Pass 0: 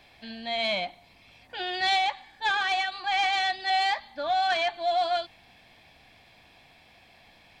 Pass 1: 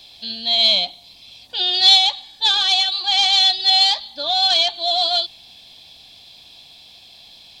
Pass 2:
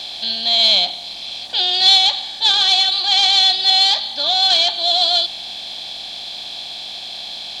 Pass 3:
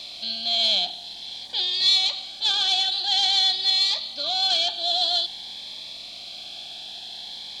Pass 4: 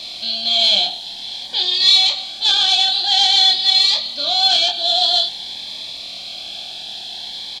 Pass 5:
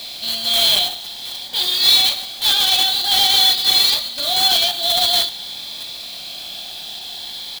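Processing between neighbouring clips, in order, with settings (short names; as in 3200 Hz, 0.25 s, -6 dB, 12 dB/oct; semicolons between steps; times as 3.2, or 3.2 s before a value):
resonant high shelf 2700 Hz +11 dB, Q 3; gain +2 dB
per-bin compression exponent 0.6; gain -1.5 dB
cascading phaser rising 0.5 Hz; gain -6.5 dB
doubler 25 ms -3.5 dB; gain +5.5 dB
block floating point 3-bit; gain -1 dB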